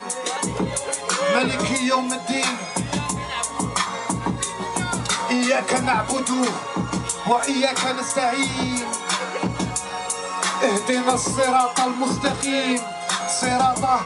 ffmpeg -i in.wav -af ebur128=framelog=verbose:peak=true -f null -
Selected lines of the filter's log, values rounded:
Integrated loudness:
  I:         -21.9 LUFS
  Threshold: -31.9 LUFS
Loudness range:
  LRA:         2.5 LU
  Threshold: -42.1 LUFS
  LRA low:   -23.3 LUFS
  LRA high:  -20.8 LUFS
True peak:
  Peak:       -4.7 dBFS